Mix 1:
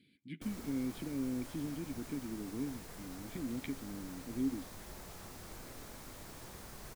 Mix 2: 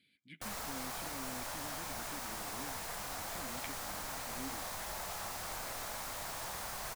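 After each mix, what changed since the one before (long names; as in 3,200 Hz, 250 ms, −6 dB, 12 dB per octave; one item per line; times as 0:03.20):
background +10.0 dB
master: add low shelf with overshoot 510 Hz −10 dB, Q 1.5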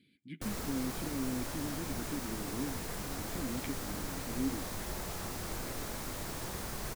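master: add low shelf with overshoot 510 Hz +10 dB, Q 1.5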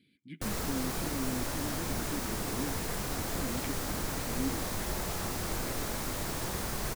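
background +5.0 dB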